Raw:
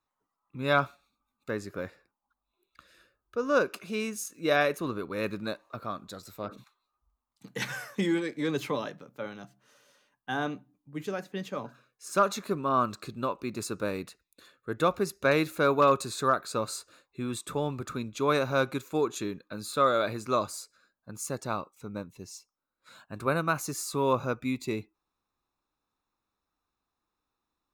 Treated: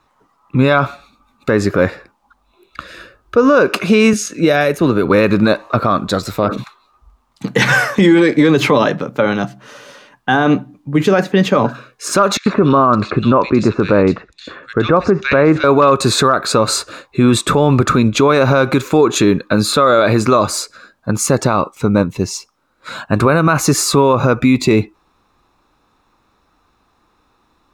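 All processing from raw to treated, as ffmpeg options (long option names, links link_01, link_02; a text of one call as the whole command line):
ffmpeg -i in.wav -filter_complex "[0:a]asettb=1/sr,asplit=3[link_01][link_02][link_03];[link_01]atrim=end=4.134[link_04];[link_02]atrim=start=4.13:end=5.06,asetpts=PTS-STARTPTS,afade=type=in:duration=0.004:curve=qsin,afade=type=out:start_time=0.926:duration=0.004:curve=qsin,bandreject=frequency=1100:width=5.6,acrossover=split=120|6800[link_05][link_06][link_07];[link_05]acompressor=threshold=-54dB:ratio=4[link_08];[link_06]acompressor=threshold=-37dB:ratio=4[link_09];[link_07]acompressor=threshold=-53dB:ratio=4[link_10];[link_08][link_09][link_10]amix=inputs=3:normalize=0[link_11];[link_03]atrim=start=5.056[link_12];[link_04][link_11]acrossfade=duration=0.004:curve1=hsin:curve2=qsin[link_13];[link_13][link_12]acrossfade=duration=0.004:curve1=qsin:curve2=hsin,asettb=1/sr,asplit=3[link_14][link_15][link_16];[link_14]atrim=end=12.374[link_17];[link_15]atrim=start=12.37:end=15.64,asetpts=PTS-STARTPTS,afade=type=in:duration=0.004:curve=qsin,afade=type=out:start_time=3.266:duration=0.004:curve=qsin,acrossover=split=2500[link_18][link_19];[link_19]acompressor=threshold=-50dB:ratio=4:attack=1:release=60[link_20];[link_18][link_20]amix=inputs=2:normalize=0,lowpass=frequency=6700:width=0.5412,lowpass=frequency=6700:width=1.3066,acrossover=split=2400[link_21][link_22];[link_21]adelay=90[link_23];[link_23][link_22]amix=inputs=2:normalize=0,atrim=end_sample=144207[link_24];[link_16]atrim=start=15.636[link_25];[link_17][link_24]acrossfade=duration=0.004:curve1=hsin:curve2=qsin[link_26];[link_26][link_25]acrossfade=duration=0.004:curve1=qsin:curve2=hsin,aemphasis=mode=reproduction:type=50kf,acompressor=threshold=-28dB:ratio=6,alimiter=level_in=28.5dB:limit=-1dB:release=50:level=0:latency=1,volume=-1.5dB" out.wav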